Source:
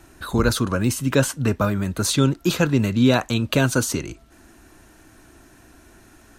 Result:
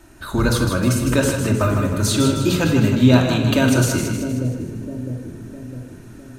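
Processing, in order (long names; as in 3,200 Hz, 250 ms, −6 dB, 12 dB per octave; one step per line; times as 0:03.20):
echo with a time of its own for lows and highs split 520 Hz, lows 656 ms, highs 156 ms, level −6.5 dB
on a send at −2 dB: convolution reverb RT60 0.70 s, pre-delay 3 ms
on the sum: level −1 dB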